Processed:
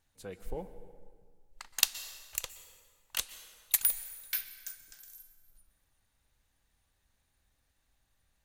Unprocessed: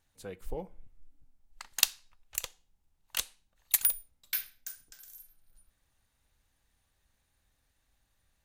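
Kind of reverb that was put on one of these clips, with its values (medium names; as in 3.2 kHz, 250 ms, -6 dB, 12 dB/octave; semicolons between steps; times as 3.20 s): plate-style reverb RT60 1.8 s, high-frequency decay 0.7×, pre-delay 110 ms, DRR 12.5 dB; trim -1 dB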